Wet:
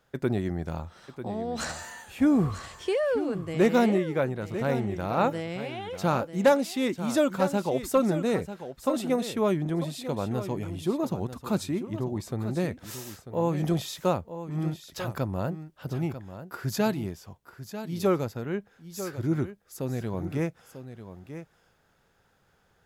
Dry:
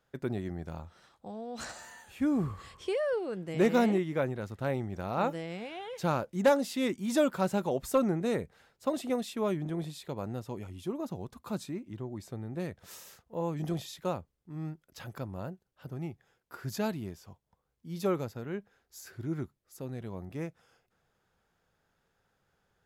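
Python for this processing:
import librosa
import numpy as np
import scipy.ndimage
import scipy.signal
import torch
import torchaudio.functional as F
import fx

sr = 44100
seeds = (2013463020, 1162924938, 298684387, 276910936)

p1 = fx.rider(x, sr, range_db=10, speed_s=2.0)
p2 = x + (p1 * 10.0 ** (1.0 / 20.0))
p3 = p2 + 10.0 ** (-11.5 / 20.0) * np.pad(p2, (int(944 * sr / 1000.0), 0))[:len(p2)]
y = p3 * 10.0 ** (-2.0 / 20.0)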